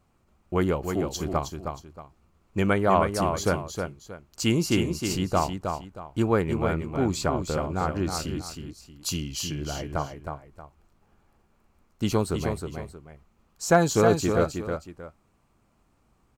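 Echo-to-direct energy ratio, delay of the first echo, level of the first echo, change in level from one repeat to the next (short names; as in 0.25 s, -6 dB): -5.5 dB, 0.315 s, -6.0 dB, -10.5 dB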